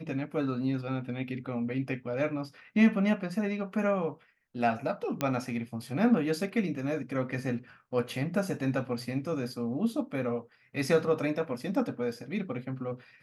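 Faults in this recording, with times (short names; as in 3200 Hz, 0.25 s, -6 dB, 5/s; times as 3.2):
5.21 pop -14 dBFS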